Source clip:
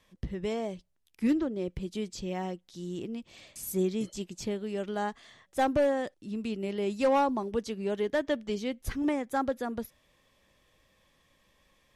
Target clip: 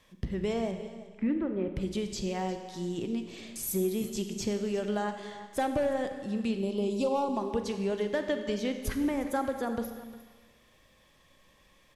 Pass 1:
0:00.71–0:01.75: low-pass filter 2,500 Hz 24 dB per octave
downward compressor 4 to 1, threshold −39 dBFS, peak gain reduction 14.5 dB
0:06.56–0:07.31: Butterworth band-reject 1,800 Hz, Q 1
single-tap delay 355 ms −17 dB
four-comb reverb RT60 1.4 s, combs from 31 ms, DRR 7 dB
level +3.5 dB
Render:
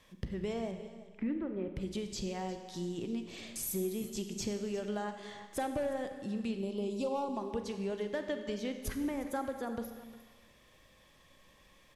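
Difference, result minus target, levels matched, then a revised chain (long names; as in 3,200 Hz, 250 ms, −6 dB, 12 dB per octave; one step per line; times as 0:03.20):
downward compressor: peak gain reduction +6 dB
0:00.71–0:01.75: low-pass filter 2,500 Hz 24 dB per octave
downward compressor 4 to 1, threshold −31 dBFS, peak gain reduction 8.5 dB
0:06.56–0:07.31: Butterworth band-reject 1,800 Hz, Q 1
single-tap delay 355 ms −17 dB
four-comb reverb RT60 1.4 s, combs from 31 ms, DRR 7 dB
level +3.5 dB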